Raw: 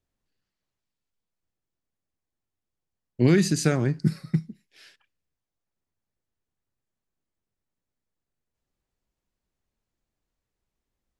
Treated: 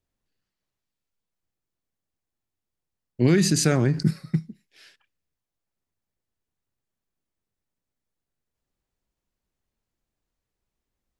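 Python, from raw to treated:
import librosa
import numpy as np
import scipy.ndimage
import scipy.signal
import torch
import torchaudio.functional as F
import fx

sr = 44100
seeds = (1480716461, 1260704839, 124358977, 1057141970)

y = fx.env_flatten(x, sr, amount_pct=50, at=(3.41, 4.11))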